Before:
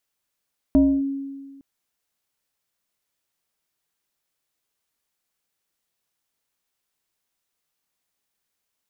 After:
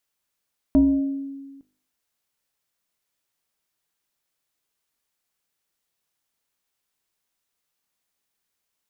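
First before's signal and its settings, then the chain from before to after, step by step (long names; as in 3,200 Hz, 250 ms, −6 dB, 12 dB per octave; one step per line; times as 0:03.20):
two-operator FM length 0.86 s, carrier 275 Hz, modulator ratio 1.23, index 0.51, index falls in 0.28 s linear, decay 1.56 s, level −10.5 dB
hum removal 51.01 Hz, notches 16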